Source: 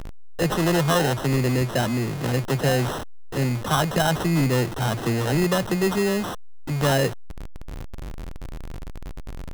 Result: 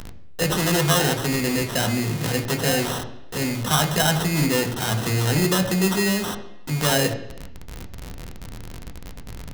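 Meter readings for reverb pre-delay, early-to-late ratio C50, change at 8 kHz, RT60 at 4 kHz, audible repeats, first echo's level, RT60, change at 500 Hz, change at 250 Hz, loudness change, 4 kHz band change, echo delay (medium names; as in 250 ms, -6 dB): 3 ms, 11.0 dB, +7.0 dB, 0.90 s, no echo, no echo, 0.85 s, -1.0 dB, +0.5 dB, +1.5 dB, +5.5 dB, no echo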